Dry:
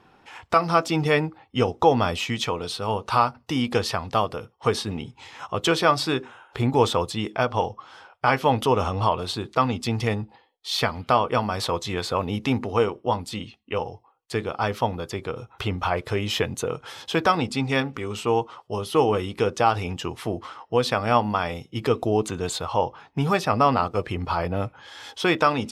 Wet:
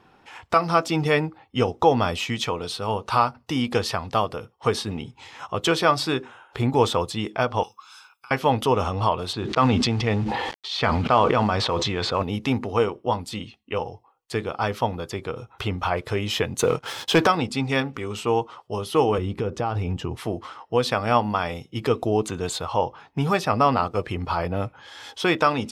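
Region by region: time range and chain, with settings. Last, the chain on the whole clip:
0:07.63–0:08.31: first difference + comb filter 0.8 ms, depth 91% + compressor whose output falls as the input rises −42 dBFS
0:09.33–0:12.23: log-companded quantiser 6 bits + low-pass filter 4,100 Hz + level that may fall only so fast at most 21 dB per second
0:16.59–0:17.27: high-pass filter 90 Hz + leveller curve on the samples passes 2
0:19.18–0:20.17: spectral tilt −2.5 dB per octave + downward compressor 3 to 1, threshold −23 dBFS
whole clip: no processing

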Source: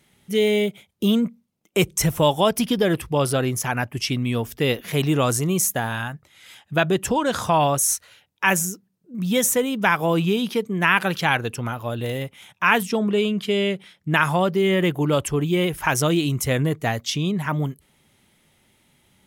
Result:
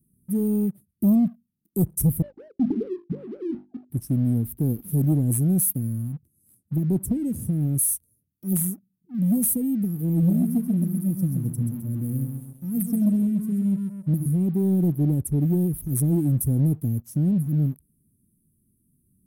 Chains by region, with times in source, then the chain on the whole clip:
0:02.22–0:03.90: three sine waves on the formant tracks + mains-hum notches 50/100/150/200/250/300/350/400 Hz
0:10.09–0:14.26: parametric band 410 Hz −14.5 dB 0.26 octaves + repeating echo 131 ms, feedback 42%, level −6 dB
whole clip: inverse Chebyshev band-stop filter 950–3,300 Hz, stop band 70 dB; leveller curve on the samples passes 1; parametric band 7,100 Hz −10 dB 0.34 octaves

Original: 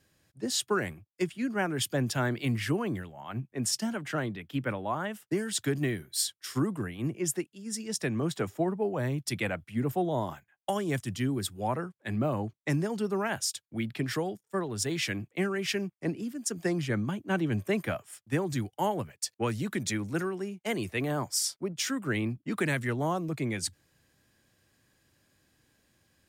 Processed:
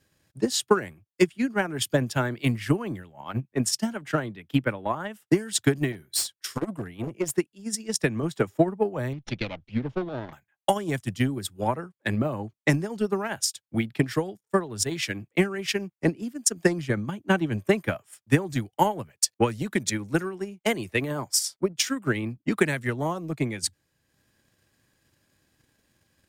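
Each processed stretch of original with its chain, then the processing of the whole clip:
0:05.92–0:07.32: hard clipping −27 dBFS + saturating transformer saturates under 240 Hz
0:09.13–0:10.33: lower of the sound and its delayed copy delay 0.32 ms + low-pass filter 4,900 Hz 24 dB per octave + downward compressor 1.5 to 1, threshold −36 dBFS
whole clip: parametric band 780 Hz +2.5 dB 0.33 octaves; notch filter 740 Hz, Q 13; transient designer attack +11 dB, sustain −5 dB

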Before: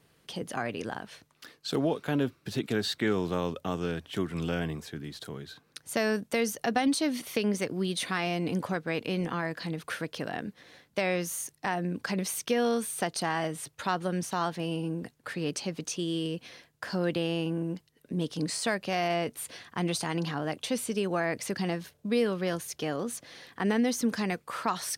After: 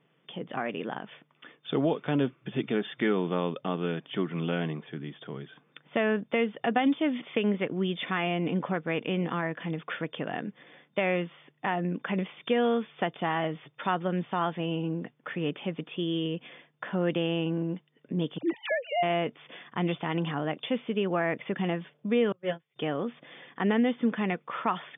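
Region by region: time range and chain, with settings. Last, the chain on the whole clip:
0:18.38–0:19.03: three sine waves on the formant tracks + all-pass dispersion lows, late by 58 ms, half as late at 810 Hz
0:22.32–0:22.76: noise gate −29 dBFS, range −28 dB + double-tracking delay 13 ms −2.5 dB + multiband upward and downward expander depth 40%
whole clip: automatic gain control gain up to 4 dB; notch filter 1,600 Hz, Q 19; brick-wall band-pass 120–3,600 Hz; level −2.5 dB

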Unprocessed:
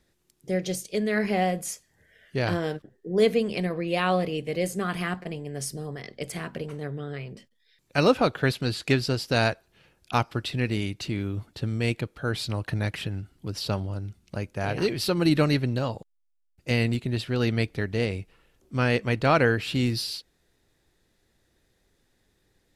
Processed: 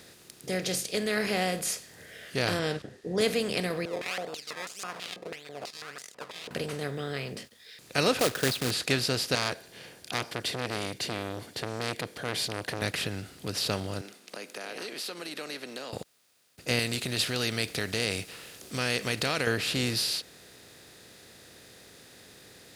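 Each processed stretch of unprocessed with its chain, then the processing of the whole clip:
0:02.59–0:03.21: low-pass filter 6,700 Hz + low-shelf EQ 120 Hz +10.5 dB
0:03.85–0:06.51: sample-and-hold swept by an LFO 21× 1.7 Hz + band-pass on a step sequencer 6.1 Hz 470–7,000 Hz
0:08.19–0:08.71: spectral envelope exaggerated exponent 2 + log-companded quantiser 4 bits
0:09.35–0:12.82: notch comb filter 1,300 Hz + saturating transformer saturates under 2,300 Hz
0:14.01–0:15.93: Bessel high-pass filter 400 Hz, order 8 + downward compressor 3 to 1, threshold −46 dBFS + one half of a high-frequency compander decoder only
0:16.79–0:19.47: downward compressor 4 to 1, threshold −27 dBFS + high-shelf EQ 2,400 Hz +11.5 dB
whole clip: compressor on every frequency bin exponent 0.6; high-pass filter 54 Hz; high-shelf EQ 2,200 Hz +10 dB; level −8.5 dB

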